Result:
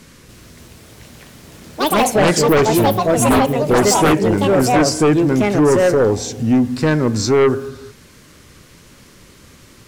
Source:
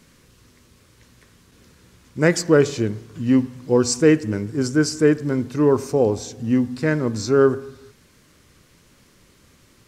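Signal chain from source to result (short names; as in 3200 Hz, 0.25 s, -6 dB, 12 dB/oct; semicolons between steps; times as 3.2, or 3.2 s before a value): in parallel at -2.5 dB: compressor, threshold -26 dBFS, peak gain reduction 15.5 dB; on the sum: echoes that change speed 0.29 s, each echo +5 st, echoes 3; sine folder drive 10 dB, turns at 0.5 dBFS; gain -9 dB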